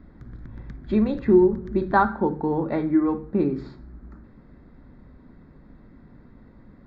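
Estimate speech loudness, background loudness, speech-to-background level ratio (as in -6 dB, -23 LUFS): -22.5 LUFS, -42.0 LUFS, 19.5 dB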